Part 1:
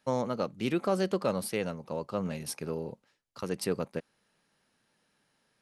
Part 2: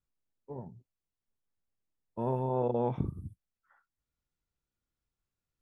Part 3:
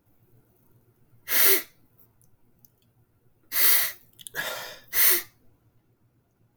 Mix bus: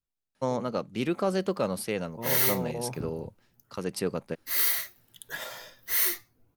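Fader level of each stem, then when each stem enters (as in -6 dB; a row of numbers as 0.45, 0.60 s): +1.0, -4.5, -6.0 dB; 0.35, 0.00, 0.95 s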